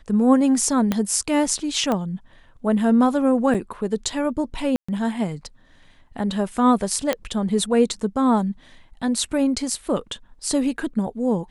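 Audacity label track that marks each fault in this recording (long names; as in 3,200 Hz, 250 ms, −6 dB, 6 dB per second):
0.920000	0.920000	click −8 dBFS
1.920000	1.920000	click −11 dBFS
3.540000	3.550000	drop-out 6.1 ms
4.760000	4.880000	drop-out 125 ms
7.130000	7.130000	click −8 dBFS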